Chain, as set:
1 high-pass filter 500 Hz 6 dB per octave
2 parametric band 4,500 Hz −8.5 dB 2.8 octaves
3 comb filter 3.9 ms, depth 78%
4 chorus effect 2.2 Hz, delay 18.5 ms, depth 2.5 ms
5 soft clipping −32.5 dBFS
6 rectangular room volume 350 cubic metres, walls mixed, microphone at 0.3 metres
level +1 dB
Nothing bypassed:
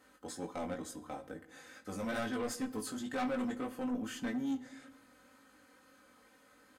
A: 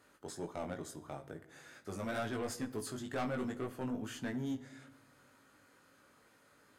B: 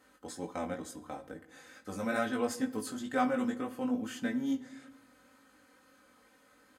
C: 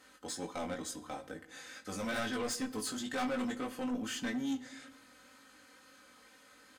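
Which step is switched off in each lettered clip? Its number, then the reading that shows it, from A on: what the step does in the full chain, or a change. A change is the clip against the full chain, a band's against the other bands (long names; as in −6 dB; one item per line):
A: 3, 125 Hz band +8.0 dB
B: 5, distortion level −10 dB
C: 2, 4 kHz band +6.0 dB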